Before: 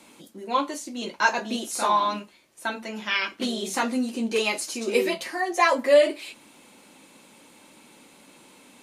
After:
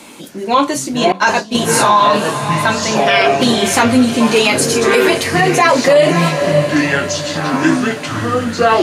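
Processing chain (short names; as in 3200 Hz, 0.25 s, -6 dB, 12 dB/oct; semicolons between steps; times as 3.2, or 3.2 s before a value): echoes that change speed 0.229 s, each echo -7 st, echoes 2, each echo -6 dB; diffused feedback echo 0.579 s, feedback 42%, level -12 dB; 1.12–1.55 expander -21 dBFS; maximiser +16 dB; gain -1 dB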